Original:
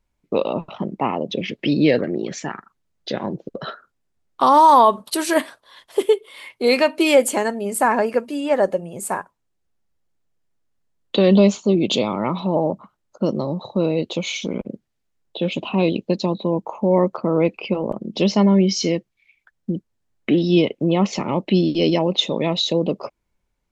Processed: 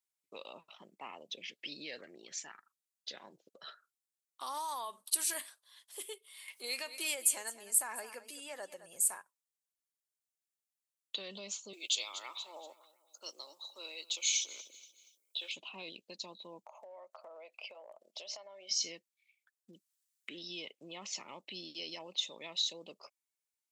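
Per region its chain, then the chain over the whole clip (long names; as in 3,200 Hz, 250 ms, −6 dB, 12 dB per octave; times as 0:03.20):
0:06.48–0:09.17: single-tap delay 211 ms −16.5 dB + upward compression, threshold −19 dBFS
0:11.73–0:15.52: Butterworth high-pass 280 Hz + spectral tilt +4 dB per octave + repeating echo 237 ms, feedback 43%, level −19 dB
0:16.65–0:18.71: high-pass with resonance 630 Hz, resonance Q 6.1 + downward compressor 5 to 1, threshold −23 dBFS
0:19.73–0:20.36: parametric band 740 Hz −13 dB 0.27 octaves + one half of a high-frequency compander encoder only
whole clip: parametric band 8,900 Hz +3.5 dB 0.46 octaves; brickwall limiter −9.5 dBFS; first difference; level −6 dB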